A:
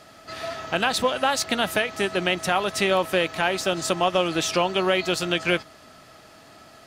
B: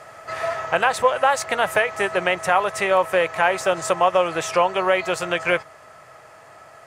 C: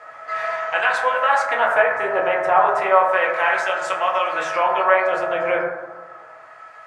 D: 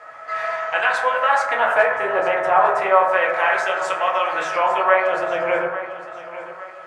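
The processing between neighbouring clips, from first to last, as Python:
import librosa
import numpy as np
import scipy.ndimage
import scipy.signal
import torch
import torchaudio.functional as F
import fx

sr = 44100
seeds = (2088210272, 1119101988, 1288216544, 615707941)

y1 = fx.rider(x, sr, range_db=3, speed_s=0.5)
y1 = fx.graphic_eq_10(y1, sr, hz=(125, 250, 500, 1000, 2000, 4000, 8000), db=(8, -9, 10, 10, 9, -6, 7))
y1 = y1 * librosa.db_to_amplitude(-5.5)
y2 = fx.filter_lfo_bandpass(y1, sr, shape='sine', hz=0.32, low_hz=760.0, high_hz=2300.0, q=0.79)
y2 = fx.rev_fdn(y2, sr, rt60_s=1.2, lf_ratio=1.2, hf_ratio=0.3, size_ms=63.0, drr_db=-4.0)
y2 = y2 * librosa.db_to_amplitude(-1.0)
y3 = fx.echo_feedback(y2, sr, ms=852, feedback_pct=39, wet_db=-14.0)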